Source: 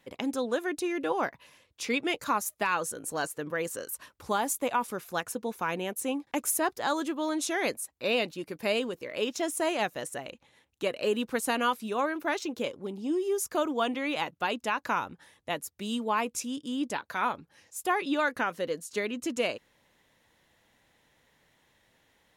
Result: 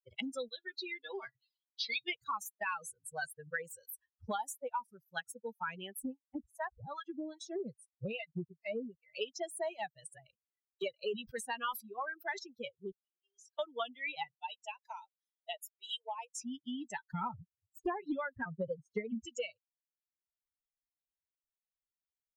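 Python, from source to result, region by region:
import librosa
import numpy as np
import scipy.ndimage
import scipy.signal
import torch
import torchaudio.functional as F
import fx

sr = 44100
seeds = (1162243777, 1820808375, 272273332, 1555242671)

y = fx.chain(x, sr, fx.lowpass_res(hz=4300.0, q=3.8),
    fx.high_shelf(hz=2600.0, db=6.0),
    fx.comb_fb(f0_hz=130.0, decay_s=0.21, harmonics='odd', damping=0.0, mix_pct=70), at=(0.48, 2.08))
y = fx.chain(y, sr, fx.harmonic_tremolo(hz=2.5, depth_pct=100, crossover_hz=640.0),
    fx.riaa(side='playback'), at=(6.02, 9.15))
y = fx.chain(y, sr, fx.high_shelf(hz=4600.0, db=-3.5),
    fx.sustainer(db_per_s=96.0), at=(11.0, 12.39))
y = fx.chain(y, sr, fx.level_steps(step_db=21),
    fx.bandpass_q(hz=3100.0, q=1.2),
    fx.doubler(ms=20.0, db=-3.0), at=(12.91, 13.6))
y = fx.chain(y, sr, fx.cheby2_highpass(hz=200.0, order=4, stop_db=50),
    fx.peak_eq(hz=1400.0, db=-12.0, octaves=1.3),
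    fx.notch(hz=4400.0, q=8.4), at=(14.34, 16.41))
y = fx.chain(y, sr, fx.tilt_eq(slope=-4.5),
    fx.vibrato_shape(shape='saw_up', rate_hz=3.0, depth_cents=160.0), at=(17.12, 19.25))
y = fx.bin_expand(y, sr, power=3.0)
y = fx.dynamic_eq(y, sr, hz=290.0, q=7.8, threshold_db=-58.0, ratio=4.0, max_db=-7)
y = fx.band_squash(y, sr, depth_pct=100)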